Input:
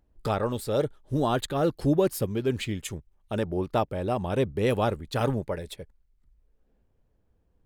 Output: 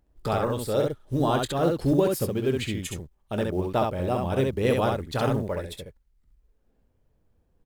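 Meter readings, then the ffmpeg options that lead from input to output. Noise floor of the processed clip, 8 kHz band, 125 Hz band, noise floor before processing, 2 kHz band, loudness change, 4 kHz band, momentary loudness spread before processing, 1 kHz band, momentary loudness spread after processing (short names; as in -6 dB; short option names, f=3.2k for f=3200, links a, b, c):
-68 dBFS, +2.0 dB, +1.5 dB, -70 dBFS, +2.0 dB, +1.5 dB, +2.0 dB, 10 LU, +2.0 dB, 10 LU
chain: -af "aecho=1:1:23|67:0.211|0.668,acrusher=bits=9:mode=log:mix=0:aa=0.000001"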